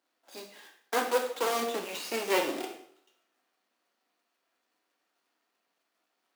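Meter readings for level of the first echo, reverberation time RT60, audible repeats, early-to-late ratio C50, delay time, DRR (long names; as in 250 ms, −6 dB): no echo audible, 0.65 s, no echo audible, 7.5 dB, no echo audible, 2.5 dB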